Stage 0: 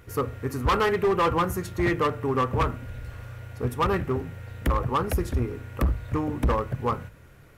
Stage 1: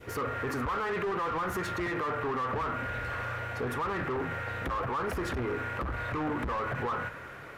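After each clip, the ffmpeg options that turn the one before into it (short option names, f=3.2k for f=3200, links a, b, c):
-filter_complex "[0:a]asplit=2[a][b];[b]highpass=f=720:p=1,volume=23dB,asoftclip=type=tanh:threshold=-18dB[c];[a][c]amix=inputs=2:normalize=0,lowpass=f=1.7k:p=1,volume=-6dB,adynamicequalizer=threshold=0.0112:dfrequency=1400:dqfactor=1:tfrequency=1400:tqfactor=1:attack=5:release=100:ratio=0.375:range=3.5:mode=boostabove:tftype=bell,alimiter=limit=-23.5dB:level=0:latency=1,volume=-3dB"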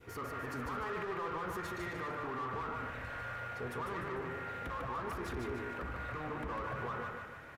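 -af "flanger=delay=0.8:depth=1.2:regen=-76:speed=0.38:shape=triangular,aecho=1:1:149|298|447|596|745|894:0.631|0.284|0.128|0.0575|0.0259|0.0116,volume=-4.5dB"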